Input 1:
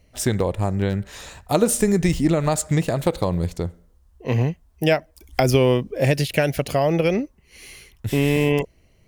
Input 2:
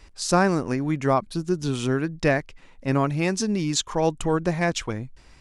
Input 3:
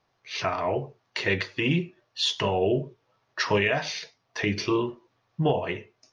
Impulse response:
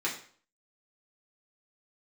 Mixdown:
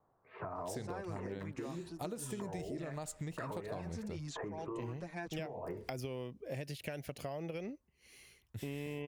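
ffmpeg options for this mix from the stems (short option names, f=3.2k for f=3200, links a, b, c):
-filter_complex "[0:a]highpass=60,adelay=500,volume=-17dB[a];[1:a]asplit=2[b][c];[c]adelay=6.6,afreqshift=0.65[d];[b][d]amix=inputs=2:normalize=1,adelay=550,volume=-12.5dB[e];[2:a]lowpass=f=1.2k:w=0.5412,lowpass=f=1.2k:w=1.3066,bandreject=f=60:t=h:w=6,bandreject=f=120:t=h:w=6,volume=-0.5dB[f];[e][f]amix=inputs=2:normalize=0,acrossover=split=360|2800[g][h][i];[g]acompressor=threshold=-38dB:ratio=4[j];[h]acompressor=threshold=-33dB:ratio=4[k];[i]acompressor=threshold=-53dB:ratio=4[l];[j][k][l]amix=inputs=3:normalize=0,alimiter=level_in=5.5dB:limit=-24dB:level=0:latency=1:release=315,volume=-5.5dB,volume=0dB[m];[a][m]amix=inputs=2:normalize=0,acompressor=threshold=-38dB:ratio=6"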